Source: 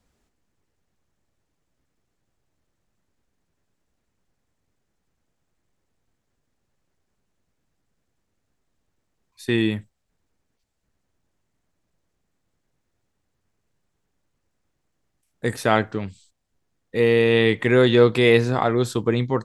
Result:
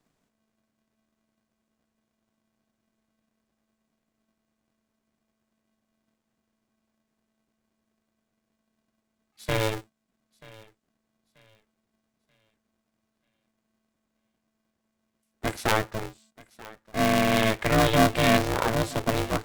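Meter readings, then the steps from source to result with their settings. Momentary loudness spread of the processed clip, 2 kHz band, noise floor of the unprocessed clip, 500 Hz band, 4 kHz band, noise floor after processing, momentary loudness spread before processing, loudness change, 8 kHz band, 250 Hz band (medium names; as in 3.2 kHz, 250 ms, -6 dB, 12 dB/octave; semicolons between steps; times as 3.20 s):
15 LU, -3.0 dB, -75 dBFS, -8.0 dB, -1.5 dB, -80 dBFS, 15 LU, -5.0 dB, +6.0 dB, -5.0 dB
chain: on a send: thinning echo 934 ms, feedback 36%, high-pass 290 Hz, level -20 dB; on the sum: polarity switched at an audio rate 220 Hz; trim -5 dB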